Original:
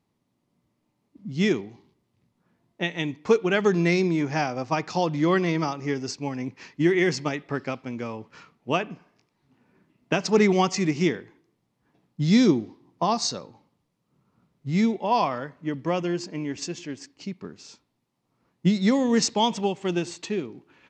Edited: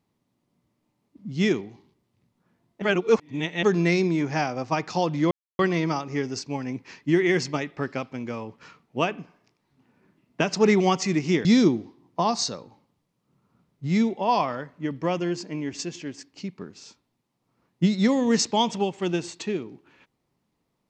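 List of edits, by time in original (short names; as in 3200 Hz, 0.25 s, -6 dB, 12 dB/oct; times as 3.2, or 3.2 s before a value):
2.82–3.63 reverse
5.31 insert silence 0.28 s
11.17–12.28 cut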